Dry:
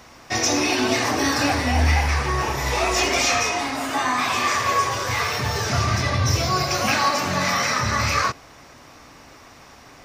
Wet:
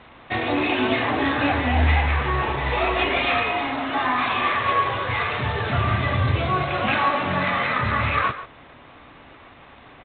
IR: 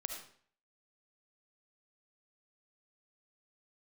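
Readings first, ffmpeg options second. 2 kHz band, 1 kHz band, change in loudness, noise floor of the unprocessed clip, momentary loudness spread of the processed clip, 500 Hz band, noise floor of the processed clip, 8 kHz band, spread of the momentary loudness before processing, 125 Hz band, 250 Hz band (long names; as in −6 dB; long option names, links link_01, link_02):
0.0 dB, 0.0 dB, −1.0 dB, −47 dBFS, 4 LU, 0.0 dB, −47 dBFS, below −40 dB, 4 LU, 0.0 dB, 0.0 dB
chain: -filter_complex "[0:a]asplit=2[link_01][link_02];[link_02]adelay=140,highpass=300,lowpass=3400,asoftclip=type=hard:threshold=-16dB,volume=-12dB[link_03];[link_01][link_03]amix=inputs=2:normalize=0" -ar 8000 -c:a adpcm_g726 -b:a 24k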